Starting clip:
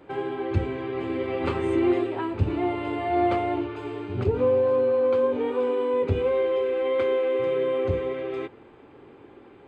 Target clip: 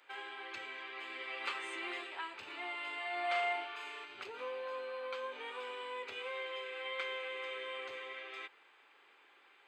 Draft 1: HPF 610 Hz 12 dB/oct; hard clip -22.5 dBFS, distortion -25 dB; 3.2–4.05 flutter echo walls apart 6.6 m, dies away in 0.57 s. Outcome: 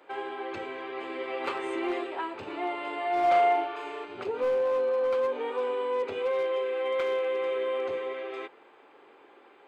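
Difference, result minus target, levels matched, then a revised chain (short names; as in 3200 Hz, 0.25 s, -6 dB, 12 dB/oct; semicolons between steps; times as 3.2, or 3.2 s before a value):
2000 Hz band -9.0 dB
HPF 1800 Hz 12 dB/oct; hard clip -22.5 dBFS, distortion -120 dB; 3.2–4.05 flutter echo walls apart 6.6 m, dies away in 0.57 s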